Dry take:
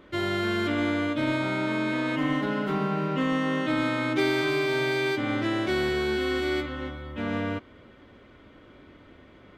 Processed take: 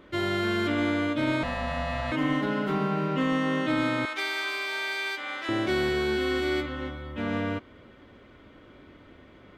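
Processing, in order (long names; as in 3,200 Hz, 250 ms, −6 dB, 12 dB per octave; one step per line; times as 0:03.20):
0:01.43–0:02.12: ring modulation 380 Hz
0:04.05–0:05.49: high-pass filter 960 Hz 12 dB per octave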